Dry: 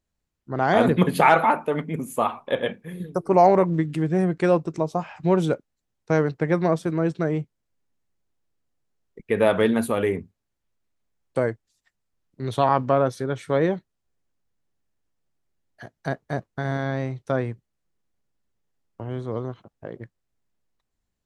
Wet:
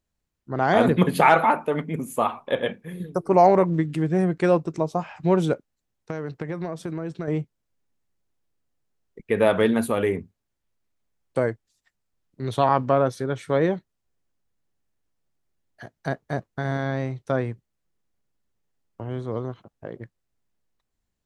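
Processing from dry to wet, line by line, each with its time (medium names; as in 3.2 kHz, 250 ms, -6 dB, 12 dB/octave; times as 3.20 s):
5.53–7.28 s: compression, threshold -26 dBFS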